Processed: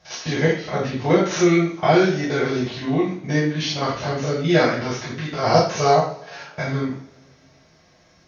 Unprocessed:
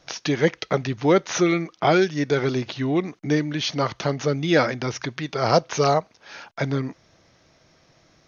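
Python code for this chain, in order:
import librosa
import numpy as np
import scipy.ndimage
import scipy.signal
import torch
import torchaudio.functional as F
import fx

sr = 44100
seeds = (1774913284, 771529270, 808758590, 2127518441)

y = fx.spec_steps(x, sr, hold_ms=50)
y = fx.rev_double_slope(y, sr, seeds[0], early_s=0.47, late_s=2.1, knee_db=-25, drr_db=-8.5)
y = y * librosa.db_to_amplitude(-5.0)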